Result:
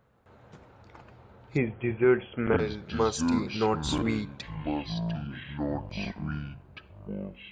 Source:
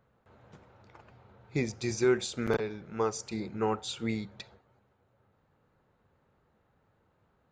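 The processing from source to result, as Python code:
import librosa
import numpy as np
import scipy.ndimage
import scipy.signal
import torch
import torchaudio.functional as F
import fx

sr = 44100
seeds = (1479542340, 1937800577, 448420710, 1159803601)

y = fx.echo_pitch(x, sr, ms=178, semitones=-7, count=2, db_per_echo=-6.0)
y = fx.brickwall_lowpass(y, sr, high_hz=3400.0, at=(1.56, 2.58), fade=0.02)
y = y * 10.0 ** (3.5 / 20.0)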